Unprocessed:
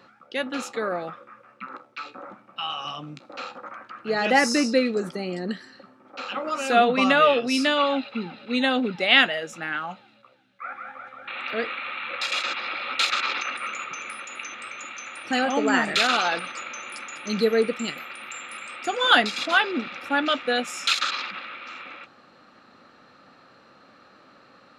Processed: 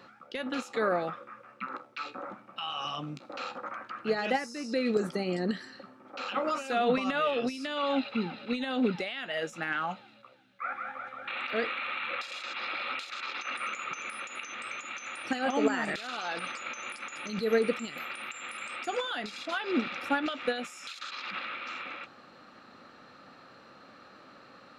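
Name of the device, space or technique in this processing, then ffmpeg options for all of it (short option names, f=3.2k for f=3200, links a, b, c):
de-esser from a sidechain: -filter_complex "[0:a]asplit=2[a][b];[b]highpass=6.2k,apad=whole_len=1092802[c];[a][c]sidechaincompress=threshold=-46dB:ratio=20:attack=1.2:release=97"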